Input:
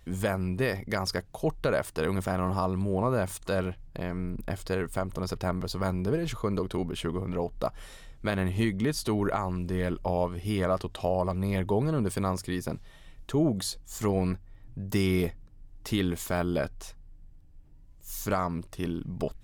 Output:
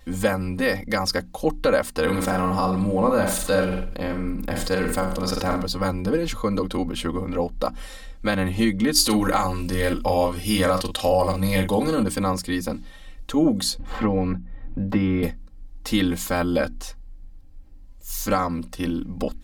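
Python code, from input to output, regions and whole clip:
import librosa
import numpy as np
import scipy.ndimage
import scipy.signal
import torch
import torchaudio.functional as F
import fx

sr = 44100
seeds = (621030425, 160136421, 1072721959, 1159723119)

y = fx.chain(x, sr, fx.room_flutter(wall_m=8.3, rt60_s=0.43),
    fx.sustainer(db_per_s=47.0), at=(2.02, 5.63))
y = fx.chain(y, sr, fx.high_shelf(hz=3200.0, db=10.5),
    fx.doubler(ms=42.0, db=-7.5), at=(8.95, 12.03))
y = fx.chain(y, sr, fx.air_absorb(metres=410.0),
    fx.band_squash(depth_pct=70), at=(13.79, 15.23))
y = fx.peak_eq(y, sr, hz=4400.0, db=3.5, octaves=0.35)
y = fx.hum_notches(y, sr, base_hz=60, count=5)
y = y + 0.98 * np.pad(y, (int(3.8 * sr / 1000.0), 0))[:len(y)]
y = y * librosa.db_to_amplitude(4.0)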